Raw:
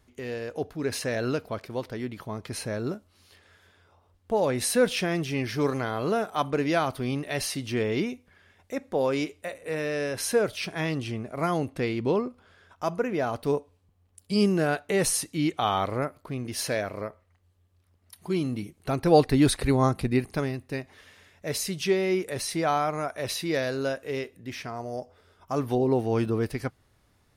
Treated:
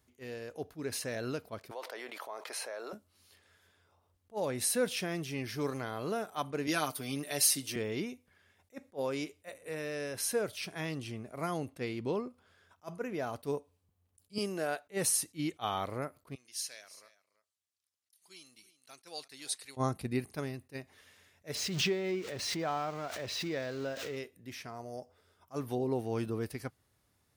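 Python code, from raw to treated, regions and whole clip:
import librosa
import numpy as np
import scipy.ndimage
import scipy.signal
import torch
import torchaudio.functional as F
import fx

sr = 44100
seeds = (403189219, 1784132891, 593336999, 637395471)

y = fx.chain(x, sr, fx.highpass(hz=590.0, slope=24),
    fx.tilt_eq(slope=-2.5),
    fx.env_flatten(amount_pct=70), at=(1.71, 2.93))
y = fx.chain(y, sr, fx.highpass(hz=170.0, slope=12),
    fx.high_shelf(hz=4500.0, db=10.5),
    fx.comb(ms=6.7, depth=0.65), at=(6.67, 7.76))
y = fx.chain(y, sr, fx.highpass(hz=440.0, slope=6),
    fx.peak_eq(hz=610.0, db=4.5, octaves=0.68), at=(14.38, 14.87))
y = fx.chain(y, sr, fx.bandpass_q(hz=6100.0, q=0.94),
    fx.echo_single(ms=335, db=-16.5), at=(16.35, 19.77))
y = fx.chain(y, sr, fx.crossing_spikes(level_db=-24.5),
    fx.air_absorb(metres=190.0),
    fx.pre_swell(db_per_s=37.0), at=(21.55, 24.17))
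y = scipy.signal.sosfilt(scipy.signal.butter(2, 57.0, 'highpass', fs=sr, output='sos'), y)
y = fx.high_shelf(y, sr, hz=6600.0, db=9.5)
y = fx.attack_slew(y, sr, db_per_s=440.0)
y = F.gain(torch.from_numpy(y), -9.0).numpy()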